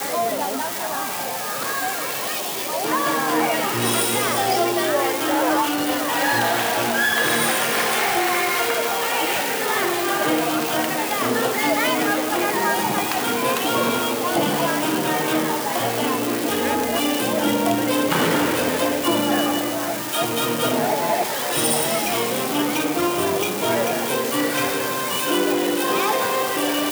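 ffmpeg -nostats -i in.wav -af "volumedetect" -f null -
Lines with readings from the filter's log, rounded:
mean_volume: -21.3 dB
max_volume: -8.7 dB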